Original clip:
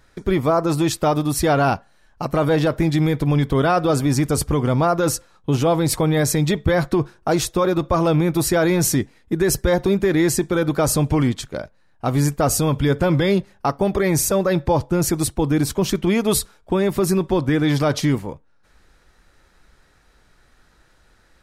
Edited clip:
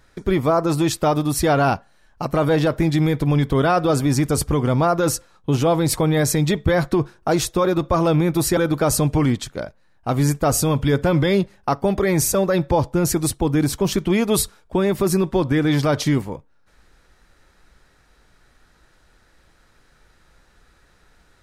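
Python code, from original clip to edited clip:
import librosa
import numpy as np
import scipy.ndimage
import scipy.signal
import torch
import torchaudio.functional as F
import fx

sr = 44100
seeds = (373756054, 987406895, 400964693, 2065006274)

y = fx.edit(x, sr, fx.cut(start_s=8.57, length_s=1.97), tone=tone)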